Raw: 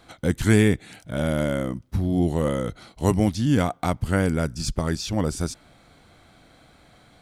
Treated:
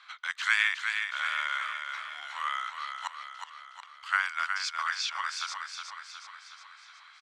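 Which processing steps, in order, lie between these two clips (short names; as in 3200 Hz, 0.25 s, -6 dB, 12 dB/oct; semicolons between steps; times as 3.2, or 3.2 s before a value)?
elliptic high-pass 1100 Hz, stop band 60 dB; 3.07–4.03 flipped gate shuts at -28 dBFS, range -30 dB; air absorption 160 m; feedback echo 0.365 s, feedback 55%, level -6 dB; gain +6 dB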